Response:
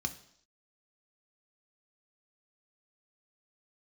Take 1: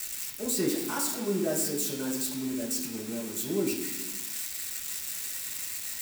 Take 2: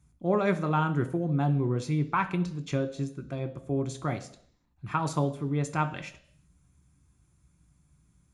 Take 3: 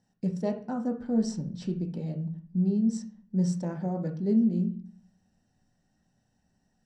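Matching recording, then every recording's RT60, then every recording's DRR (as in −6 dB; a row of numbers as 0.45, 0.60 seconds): 2; 1.2, 0.65, 0.45 seconds; −3.5, 7.0, 3.0 decibels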